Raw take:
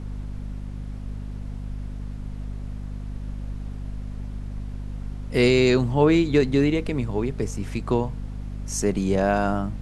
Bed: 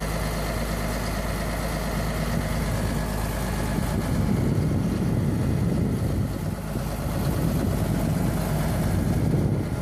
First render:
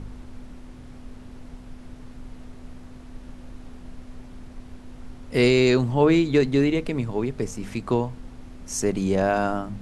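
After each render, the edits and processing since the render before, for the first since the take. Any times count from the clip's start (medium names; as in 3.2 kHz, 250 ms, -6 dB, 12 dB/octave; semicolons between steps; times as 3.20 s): de-hum 50 Hz, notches 4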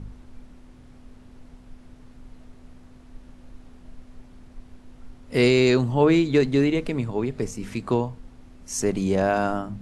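noise print and reduce 6 dB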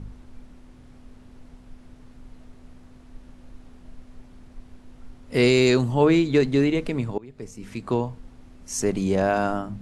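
5.48–6.08 s: treble shelf 7.8 kHz +9.5 dB; 7.18–8.08 s: fade in, from -23.5 dB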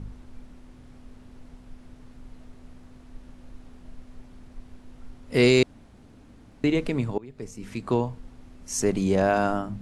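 5.63–6.64 s: room tone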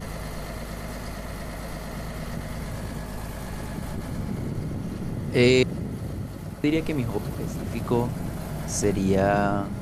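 add bed -7.5 dB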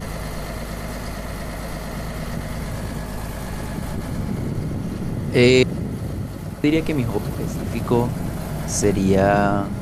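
trim +5 dB; peak limiter -3 dBFS, peak gain reduction 1.5 dB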